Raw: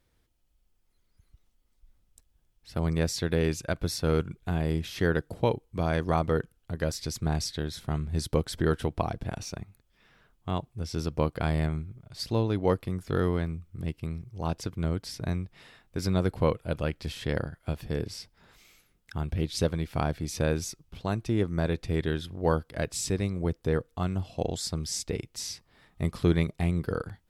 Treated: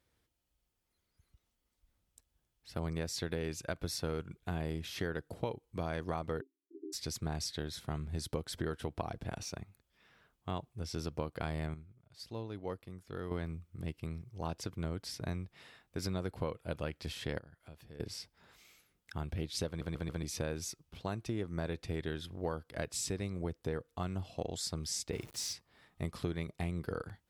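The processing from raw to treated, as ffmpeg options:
-filter_complex "[0:a]asplit=3[a][b][c];[a]afade=t=out:st=6.4:d=0.02[d];[b]asuperpass=centerf=330:order=20:qfactor=2.4,afade=t=in:st=6.4:d=0.02,afade=t=out:st=6.92:d=0.02[e];[c]afade=t=in:st=6.92:d=0.02[f];[d][e][f]amix=inputs=3:normalize=0,asettb=1/sr,asplit=3[g][h][i];[g]atrim=end=17.394[j];[h]atrim=start=17.39:end=18,asetpts=PTS-STARTPTS,afade=t=in:d=0.004:c=qsin,afade=t=out:st=0.606:d=0.004:c=qsin,acompressor=threshold=-55dB:ratio=2:attack=3.2:release=140:knee=1:detection=peak[k];[i]atrim=start=17.996[l];[j][k]acrossfade=d=0.004:c1=hsin:c2=qsin[m];[m][l]acrossfade=d=0.004:c1=qsin:c2=hsin,asettb=1/sr,asplit=3[n][o][p];[n]atrim=end=25.134[q];[o]atrim=start=25.13:end=25.53,asetpts=PTS-STARTPTS,afade=t=in:d=0.004:c=qsin,afade=t=out:st=0.396:d=0.004:c=qsin,aeval=exprs='val(0)+0.5*0.00708*sgn(val(0))':c=same[r];[p]atrim=start=25.526[s];[q][r]acrossfade=d=0.004:c1=hsin:c2=qsin[t];[t][s]acrossfade=d=0.004:c1=qsin:c2=hsin,asplit=7[u][v][w][x][y][z][aa];[u]atrim=end=11.742[ab];[v]atrim=start=11.738:end=13.312,asetpts=PTS-STARTPTS,volume=-10dB[ac];[w]atrim=start=13.308:end=19.812[ad];[x]atrim=start=19.668:end=19.812[ae];[y]atrim=start=19.668:end=19.812[af];[z]atrim=start=19.668:end=19.812[ag];[aa]atrim=start=20.228[ah];[ab][ac]acrossfade=d=0.004:c1=hsin:c2=hsin[ai];[ai][ad]acrossfade=d=0.004:c1=hsin:c2=hsin[aj];[aj][ae]acrossfade=d=0.004:c1=hsin:c2=hsin[ak];[ak][af]acrossfade=d=0.004:c1=hsin:c2=hsin[al];[al][ag]acrossfade=d=0.004:c1=hsin:c2=hsin[am];[am][ah]acrossfade=d=0.004:c1=hsin:c2=hsin,highpass=59,equalizer=f=150:t=o:w=2.3:g=-3,acompressor=threshold=-29dB:ratio=6,volume=-3.5dB"

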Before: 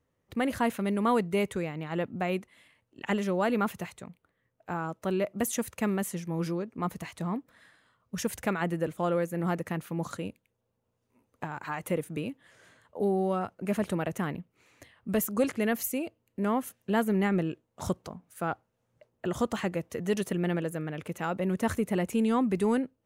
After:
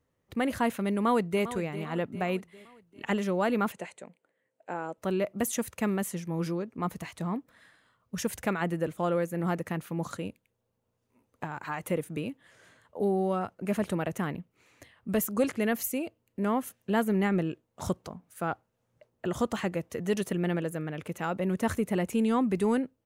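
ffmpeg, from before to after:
-filter_complex "[0:a]asplit=2[a][b];[b]afade=t=in:st=0.96:d=0.01,afade=t=out:st=1.45:d=0.01,aecho=0:1:400|800|1200|1600|2000:0.223872|0.111936|0.055968|0.027984|0.013992[c];[a][c]amix=inputs=2:normalize=0,asettb=1/sr,asplit=3[d][e][f];[d]atrim=end=3.724[g];[e]atrim=start=3.72:end=4.98,asetpts=PTS-STARTPTS,afade=t=in:d=0.004:c=qsin,afade=t=out:st=1.256:d=0.004:c=qsin,highpass=280,equalizer=f=540:t=q:w=4:g=6,equalizer=f=1.2k:t=q:w=4:g=-8,equalizer=f=3.6k:t=q:w=4:g=-5,equalizer=f=5.4k:t=q:w=4:g=-9,equalizer=f=8.4k:t=q:w=4:g=4,lowpass=f=9k:w=0.5412,lowpass=f=9k:w=1.3066[h];[f]atrim=start=4.976[i];[g][h]acrossfade=d=0.004:c1=hsin:c2=qsin[j];[j][i]acrossfade=d=0.004:c1=qsin:c2=hsin"

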